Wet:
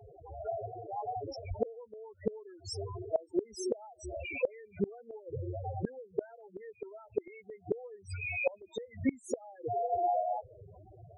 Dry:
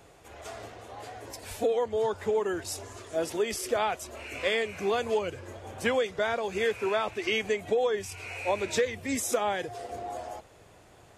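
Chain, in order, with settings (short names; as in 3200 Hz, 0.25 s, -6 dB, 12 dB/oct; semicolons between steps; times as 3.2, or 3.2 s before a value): loudest bins only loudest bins 4; flipped gate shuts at -27 dBFS, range -29 dB; gain +9 dB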